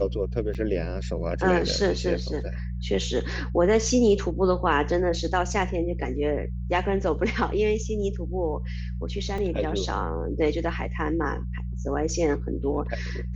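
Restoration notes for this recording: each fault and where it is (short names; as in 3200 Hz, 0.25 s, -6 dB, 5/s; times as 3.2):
hum 60 Hz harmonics 3 -31 dBFS
0.54–0.55 gap 7.6 ms
9.38 gap 3.3 ms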